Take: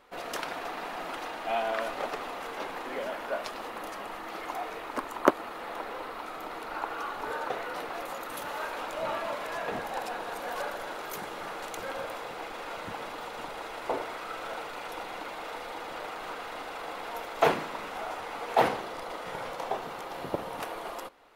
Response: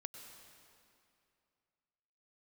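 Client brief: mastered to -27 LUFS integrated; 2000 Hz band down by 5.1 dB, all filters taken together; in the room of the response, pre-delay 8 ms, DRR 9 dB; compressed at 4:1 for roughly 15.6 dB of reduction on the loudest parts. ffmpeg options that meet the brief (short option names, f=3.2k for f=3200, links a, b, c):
-filter_complex "[0:a]equalizer=f=2k:t=o:g=-7,acompressor=threshold=-35dB:ratio=4,asplit=2[a][b];[1:a]atrim=start_sample=2205,adelay=8[c];[b][c]afir=irnorm=-1:irlink=0,volume=-5dB[d];[a][d]amix=inputs=2:normalize=0,volume=12.5dB"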